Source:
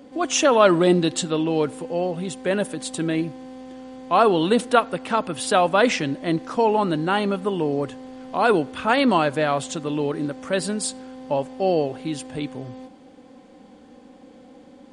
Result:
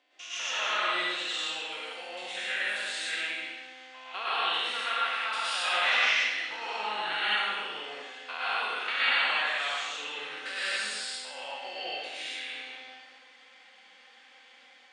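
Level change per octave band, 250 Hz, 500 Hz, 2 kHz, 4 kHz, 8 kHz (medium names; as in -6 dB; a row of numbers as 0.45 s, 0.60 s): -30.0 dB, -21.0 dB, +1.0 dB, +1.5 dB, -10.5 dB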